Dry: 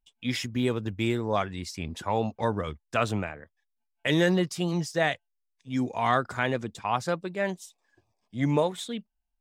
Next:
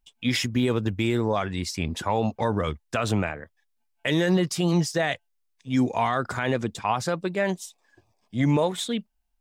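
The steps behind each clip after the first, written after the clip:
brickwall limiter −20 dBFS, peak gain reduction 10 dB
level +6.5 dB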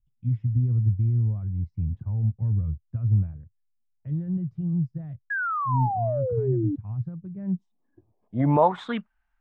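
drawn EQ curve 110 Hz 0 dB, 470 Hz −5 dB, 1,300 Hz +8 dB
low-pass filter sweep 120 Hz → 1,600 Hz, 0:07.29–0:09.11
sound drawn into the spectrogram fall, 0:05.30–0:06.76, 280–1,700 Hz −28 dBFS
level +1 dB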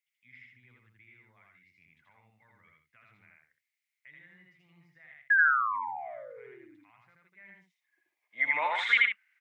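high-pass with resonance 2,100 Hz, resonance Q 9.8
loudspeakers that aren't time-aligned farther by 28 metres −1 dB, 50 metres −9 dB
level +2 dB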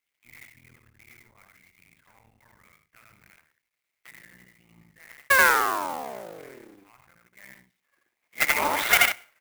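sub-harmonics by changed cycles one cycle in 3, muted
on a send at −21 dB: convolution reverb, pre-delay 8 ms
on the sum: converter with an unsteady clock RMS 0.036 ms
level +6.5 dB

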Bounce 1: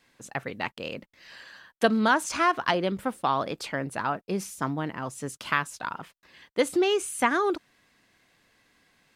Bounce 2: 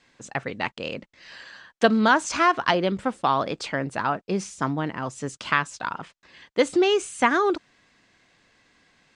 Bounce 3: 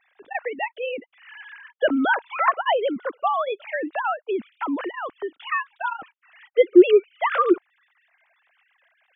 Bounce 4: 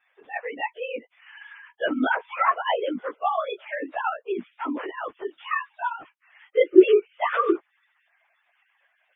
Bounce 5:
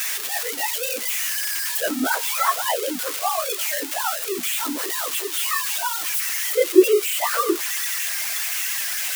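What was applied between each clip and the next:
Butterworth low-pass 8,200 Hz 36 dB per octave; level +3.5 dB
three sine waves on the formant tracks; in parallel at 0 dB: downward compressor, threshold −30 dBFS, peak gain reduction 21 dB
random phases in long frames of 50 ms; level −2.5 dB
spike at every zero crossing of −14.5 dBFS

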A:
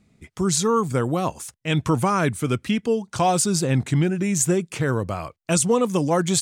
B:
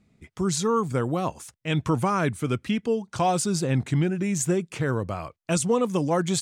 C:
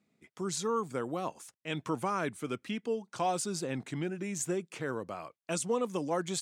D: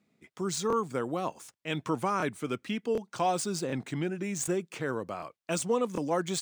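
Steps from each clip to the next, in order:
high-shelf EQ 6,200 Hz −6 dB; level −3 dB
high-pass filter 230 Hz 12 dB per octave; level −7.5 dB
running median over 3 samples; regular buffer underruns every 0.75 s, samples 1,024, repeat, from 0:00.68; level +3 dB

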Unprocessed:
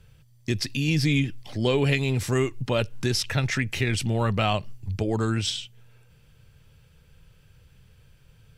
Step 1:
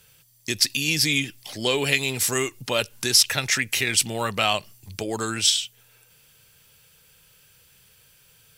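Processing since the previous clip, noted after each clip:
RIAA equalisation recording
level +2 dB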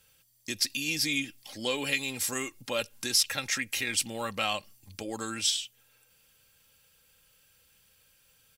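comb filter 3.7 ms, depth 46%
level −8.5 dB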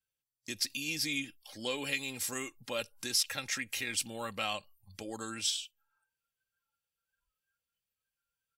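noise reduction from a noise print of the clip's start 23 dB
level −5 dB

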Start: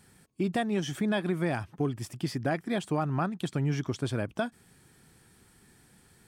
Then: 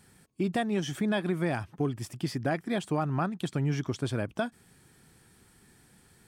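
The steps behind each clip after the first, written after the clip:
no processing that can be heard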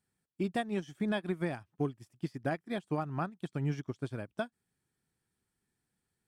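expander for the loud parts 2.5 to 1, over −40 dBFS
level −2 dB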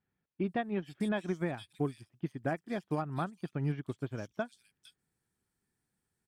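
multiband delay without the direct sound lows, highs 460 ms, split 3,400 Hz

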